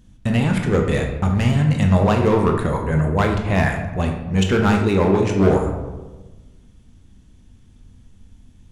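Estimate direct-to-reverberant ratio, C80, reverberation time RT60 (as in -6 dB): 2.0 dB, 7.5 dB, 1.2 s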